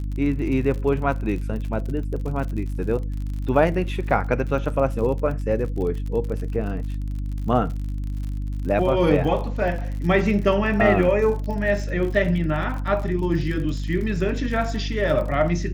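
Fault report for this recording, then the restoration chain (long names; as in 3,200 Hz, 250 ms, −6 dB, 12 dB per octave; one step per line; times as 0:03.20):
surface crackle 49 per second −31 dBFS
mains hum 50 Hz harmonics 6 −27 dBFS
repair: click removal
hum removal 50 Hz, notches 6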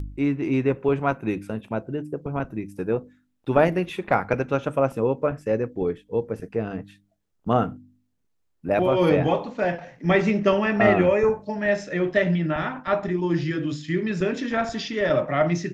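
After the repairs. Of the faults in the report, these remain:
none of them is left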